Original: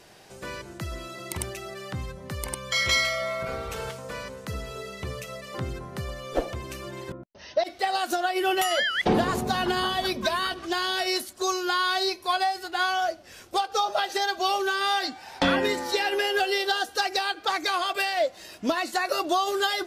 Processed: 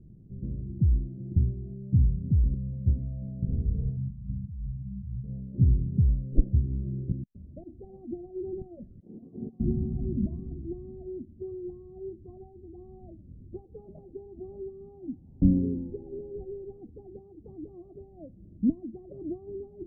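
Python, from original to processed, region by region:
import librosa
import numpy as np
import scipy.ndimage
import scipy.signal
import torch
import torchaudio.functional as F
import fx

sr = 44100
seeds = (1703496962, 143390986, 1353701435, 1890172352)

y = fx.chain(x, sr, fx.cheby1_bandstop(low_hz=180.0, high_hz=930.0, order=2),
    fx.over_compress(threshold_db=-44.0, ratio=-1.0), at=(3.97, 5.24))
y = fx.chain(y, sr, fx.highpass(hz=540.0, slope=12),
    fx.over_compress(threshold_db=-36.0, ratio=-1.0), at=(9.0, 9.6))
y = scipy.signal.sosfilt(scipy.signal.cheby2(4, 80, 1400.0, 'lowpass', fs=sr, output='sos'), y)
y = fx.low_shelf(y, sr, hz=140.0, db=7.5)
y = y * librosa.db_to_amplitude(8.0)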